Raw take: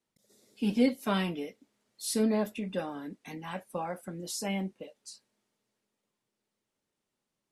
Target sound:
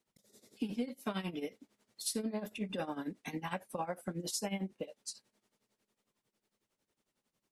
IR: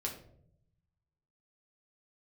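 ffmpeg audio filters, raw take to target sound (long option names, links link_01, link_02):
-af "tremolo=f=11:d=0.82,acompressor=threshold=-38dB:ratio=12,volume=5dB"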